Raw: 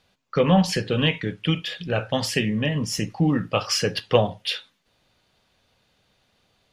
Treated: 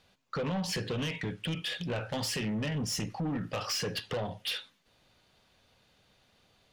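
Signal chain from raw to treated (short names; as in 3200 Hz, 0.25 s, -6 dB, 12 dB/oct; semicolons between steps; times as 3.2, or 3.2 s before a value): in parallel at +2.5 dB: limiter -13.5 dBFS, peak gain reduction 11 dB; on the sum: compressor 4:1, threshold -17 dBFS, peak gain reduction 8 dB; soft clip -20.5 dBFS, distortion -10 dB; gain -8 dB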